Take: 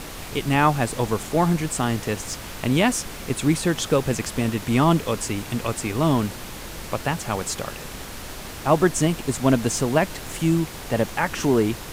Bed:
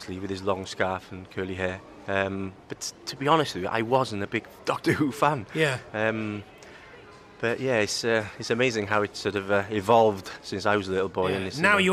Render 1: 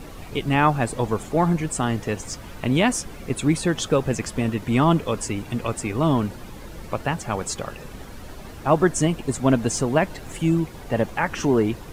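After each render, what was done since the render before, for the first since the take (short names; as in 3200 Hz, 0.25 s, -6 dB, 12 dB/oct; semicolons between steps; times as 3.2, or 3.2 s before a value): denoiser 11 dB, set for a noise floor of -36 dBFS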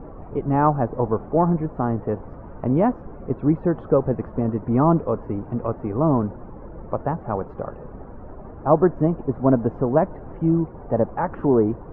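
LPF 1200 Hz 24 dB/oct; bell 520 Hz +3 dB 1.4 oct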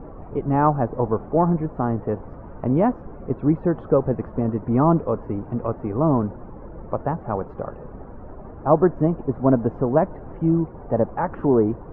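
nothing audible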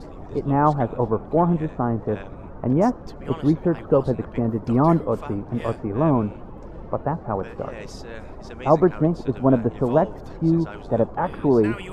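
add bed -15 dB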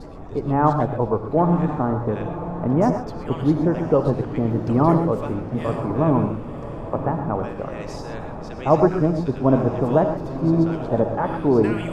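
diffused feedback echo 1.018 s, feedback 44%, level -10.5 dB; non-linear reverb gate 0.15 s rising, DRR 6.5 dB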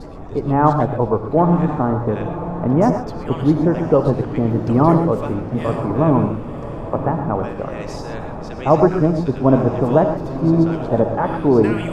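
gain +3.5 dB; limiter -2 dBFS, peak gain reduction 1.5 dB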